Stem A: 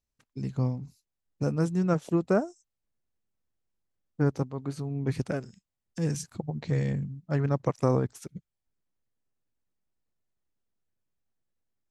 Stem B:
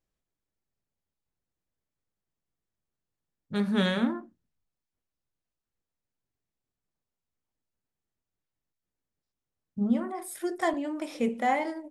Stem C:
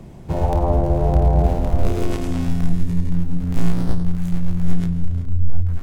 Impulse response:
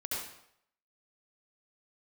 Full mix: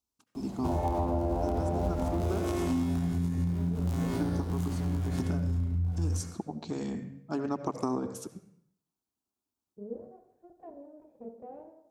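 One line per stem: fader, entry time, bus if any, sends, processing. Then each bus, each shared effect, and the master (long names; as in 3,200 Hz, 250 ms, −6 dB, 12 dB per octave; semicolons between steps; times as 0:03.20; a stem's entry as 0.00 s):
+2.5 dB, 0.00 s, bus A, send −18 dB, no processing
−19.0 dB, 0.00 s, no bus, send −11.5 dB, lower of the sound and its delayed copy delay 1.2 ms; soft clipping −16.5 dBFS, distortion −24 dB; low-pass with resonance 470 Hz, resonance Q 4.8
−1.0 dB, 0.35 s, bus A, send −6 dB, no processing
bus A: 0.0 dB, phaser with its sweep stopped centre 520 Hz, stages 6; brickwall limiter −16.5 dBFS, peak gain reduction 11.5 dB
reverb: on, RT60 0.70 s, pre-delay 63 ms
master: high-pass filter 85 Hz 12 dB per octave; downward compressor, threshold −26 dBFS, peak gain reduction 9 dB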